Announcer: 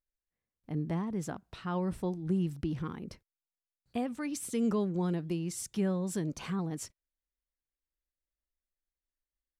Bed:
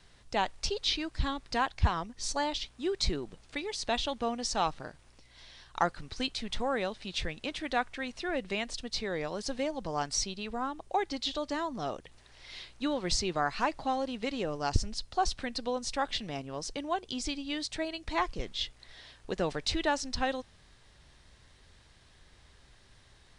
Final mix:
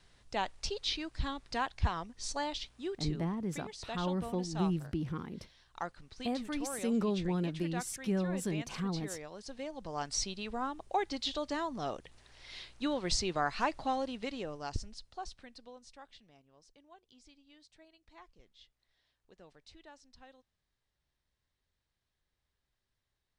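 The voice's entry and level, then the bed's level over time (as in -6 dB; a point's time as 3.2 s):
2.30 s, -1.5 dB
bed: 2.77 s -4.5 dB
3.13 s -11 dB
9.45 s -11 dB
10.27 s -2 dB
13.98 s -2 dB
16.43 s -26 dB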